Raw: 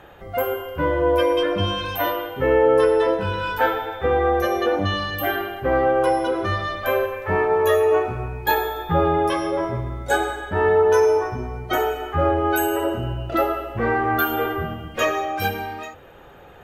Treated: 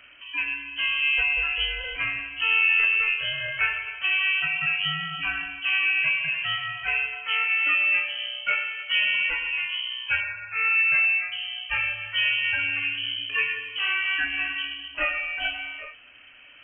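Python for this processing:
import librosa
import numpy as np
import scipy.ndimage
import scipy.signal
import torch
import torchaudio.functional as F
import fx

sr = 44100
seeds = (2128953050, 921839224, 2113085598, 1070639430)

y = fx.brickwall_highpass(x, sr, low_hz=400.0, at=(10.2, 11.32))
y = fx.freq_invert(y, sr, carrier_hz=3100)
y = F.gain(torch.from_numpy(y), -5.0).numpy()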